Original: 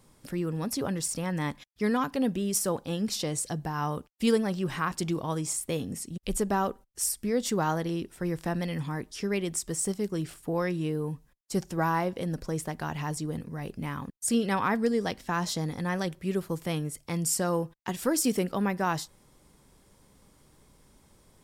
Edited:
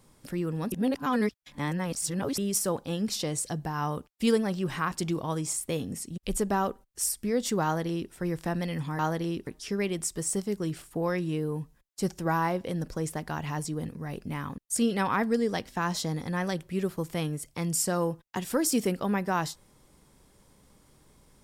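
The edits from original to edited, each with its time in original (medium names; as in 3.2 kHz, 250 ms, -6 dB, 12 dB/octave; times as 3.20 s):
0.72–2.38 s: reverse
7.64–8.12 s: copy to 8.99 s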